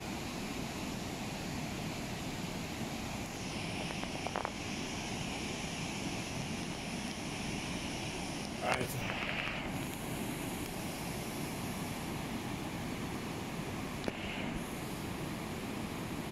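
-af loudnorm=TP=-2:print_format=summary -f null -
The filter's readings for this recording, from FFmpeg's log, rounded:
Input Integrated:    -39.0 LUFS
Input True Peak:     -13.1 dBTP
Input LRA:             2.4 LU
Input Threshold:     -49.0 LUFS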